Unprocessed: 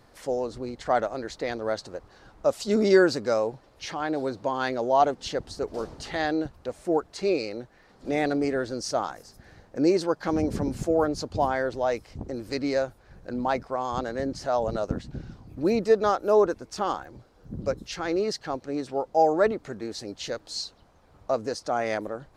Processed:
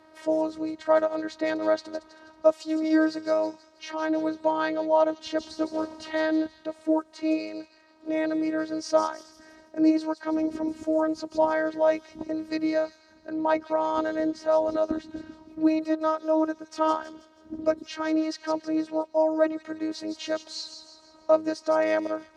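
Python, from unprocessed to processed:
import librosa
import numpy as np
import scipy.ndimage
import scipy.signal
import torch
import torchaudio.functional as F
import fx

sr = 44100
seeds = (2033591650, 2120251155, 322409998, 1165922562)

y = fx.echo_wet_highpass(x, sr, ms=161, feedback_pct=44, hz=4200.0, wet_db=-6)
y = fx.robotise(y, sr, hz=315.0)
y = fx.tilt_eq(y, sr, slope=-3.5)
y = fx.rider(y, sr, range_db=4, speed_s=0.5)
y = fx.weighting(y, sr, curve='A')
y = y * 10.0 ** (3.0 / 20.0)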